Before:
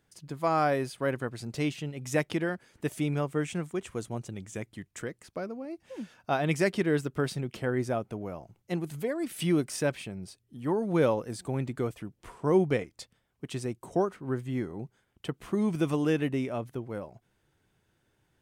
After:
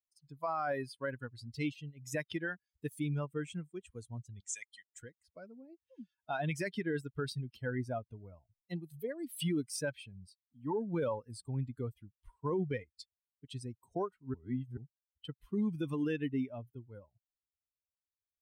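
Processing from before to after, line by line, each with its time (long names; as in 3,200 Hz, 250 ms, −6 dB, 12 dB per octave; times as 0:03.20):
0:04.40–0:04.94: meter weighting curve ITU-R 468
0:14.34–0:14.77: reverse
whole clip: spectral dynamics exaggerated over time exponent 2; dynamic equaliser 1,500 Hz, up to +4 dB, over −47 dBFS, Q 1.2; brickwall limiter −26.5 dBFS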